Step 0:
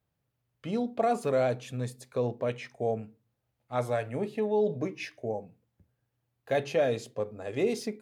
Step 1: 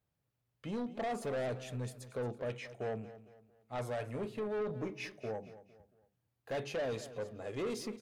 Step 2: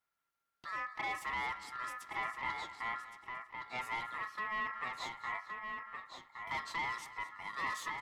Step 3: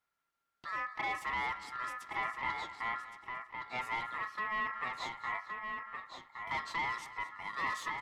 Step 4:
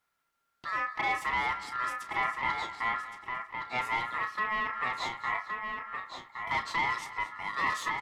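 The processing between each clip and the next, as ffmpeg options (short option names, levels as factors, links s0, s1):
-af "asoftclip=type=tanh:threshold=0.0376,aecho=1:1:227|454|681:0.178|0.0676|0.0257,volume=0.631"
-filter_complex "[0:a]aeval=exprs='val(0)*sin(2*PI*1500*n/s)':c=same,bandreject=f=1600:w=6.1,asplit=2[s0][s1];[s1]adelay=1117,lowpass=f=4700:p=1,volume=0.562,asplit=2[s2][s3];[s3]adelay=1117,lowpass=f=4700:p=1,volume=0.16,asplit=2[s4][s5];[s5]adelay=1117,lowpass=f=4700:p=1,volume=0.16[s6];[s0][s2][s4][s6]amix=inputs=4:normalize=0,volume=1.19"
-af "highshelf=f=6800:g=-7,volume=1.33"
-filter_complex "[0:a]asplit=2[s0][s1];[s1]adelay=32,volume=0.299[s2];[s0][s2]amix=inputs=2:normalize=0,volume=1.88"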